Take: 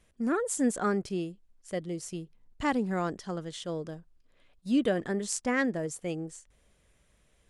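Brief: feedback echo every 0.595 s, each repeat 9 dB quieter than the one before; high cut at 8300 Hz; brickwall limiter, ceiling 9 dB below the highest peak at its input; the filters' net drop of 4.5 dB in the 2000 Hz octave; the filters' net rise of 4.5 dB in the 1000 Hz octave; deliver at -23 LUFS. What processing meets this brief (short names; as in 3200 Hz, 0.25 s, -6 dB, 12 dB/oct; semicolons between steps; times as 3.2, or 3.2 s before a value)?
LPF 8300 Hz; bell 1000 Hz +8.5 dB; bell 2000 Hz -9 dB; limiter -24 dBFS; feedback echo 0.595 s, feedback 35%, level -9 dB; gain +11.5 dB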